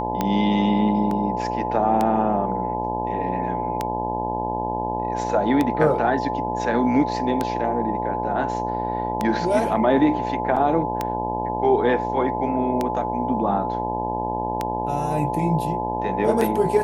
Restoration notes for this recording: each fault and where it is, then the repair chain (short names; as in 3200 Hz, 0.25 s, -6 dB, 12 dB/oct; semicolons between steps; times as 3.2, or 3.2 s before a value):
buzz 60 Hz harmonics 17 -28 dBFS
tick 33 1/3 rpm -9 dBFS
tone 860 Hz -26 dBFS
1.11 gap 2.7 ms
10.56–10.57 gap 6.3 ms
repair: de-click; de-hum 60 Hz, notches 17; notch 860 Hz, Q 30; interpolate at 1.11, 2.7 ms; interpolate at 10.56, 6.3 ms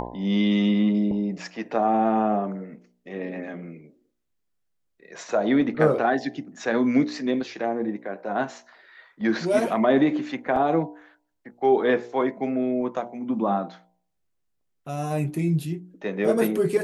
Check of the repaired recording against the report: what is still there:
none